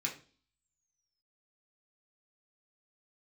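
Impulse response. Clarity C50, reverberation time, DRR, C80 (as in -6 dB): 11.0 dB, 0.40 s, -2.0 dB, 16.0 dB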